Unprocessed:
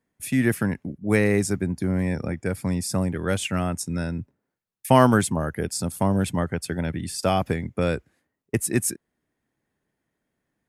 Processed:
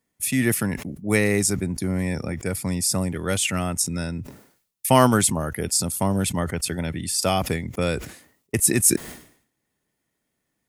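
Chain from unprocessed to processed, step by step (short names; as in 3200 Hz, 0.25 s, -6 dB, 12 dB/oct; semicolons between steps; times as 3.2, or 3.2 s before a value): high shelf 2900 Hz +10.5 dB; notch 1600 Hz, Q 12; sustainer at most 100 dB/s; gain -1 dB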